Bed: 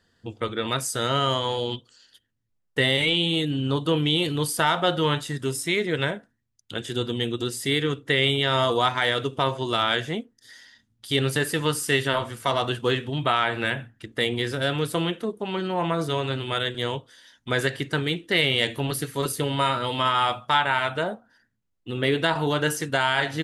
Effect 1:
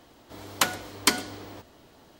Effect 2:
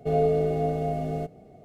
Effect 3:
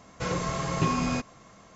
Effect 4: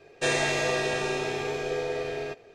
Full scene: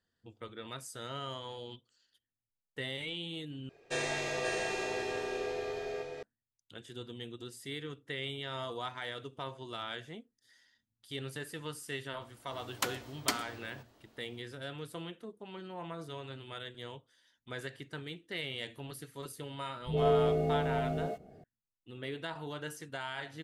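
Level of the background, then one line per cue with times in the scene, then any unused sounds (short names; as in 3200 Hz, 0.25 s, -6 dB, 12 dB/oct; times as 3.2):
bed -17.5 dB
3.69 replace with 4 -9 dB + echo 0.533 s -4 dB
12.21 add 1 -10.5 dB
19.8 add 2 -4.5 dB + dispersion highs, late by 0.113 s, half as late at 300 Hz
not used: 3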